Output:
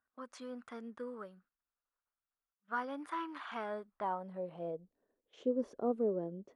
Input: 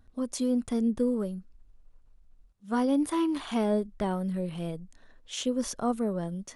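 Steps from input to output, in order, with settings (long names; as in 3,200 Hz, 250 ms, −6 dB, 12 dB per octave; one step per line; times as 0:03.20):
low-pass that shuts in the quiet parts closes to 2,700 Hz, open at −27.5 dBFS
noise gate −46 dBFS, range −10 dB
band-pass filter sweep 1,400 Hz → 410 Hz, 0:03.73–0:05.01
level +1.5 dB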